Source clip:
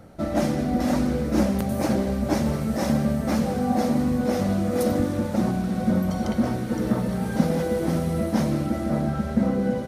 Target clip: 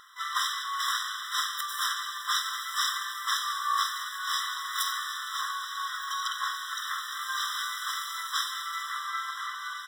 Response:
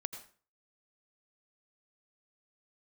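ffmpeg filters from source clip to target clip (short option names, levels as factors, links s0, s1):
-filter_complex "[0:a]asplit=3[s0][s1][s2];[s1]asetrate=29433,aresample=44100,atempo=1.49831,volume=0.708[s3];[s2]asetrate=66075,aresample=44100,atempo=0.66742,volume=0.631[s4];[s0][s3][s4]amix=inputs=3:normalize=0,equalizer=f=100:t=o:w=0.67:g=-4,equalizer=f=630:t=o:w=0.67:g=4,equalizer=f=4000:t=o:w=0.67:g=10,afftfilt=real='re*eq(mod(floor(b*sr/1024/1000),2),1)':imag='im*eq(mod(floor(b*sr/1024/1000),2),1)':win_size=1024:overlap=0.75,volume=1.58"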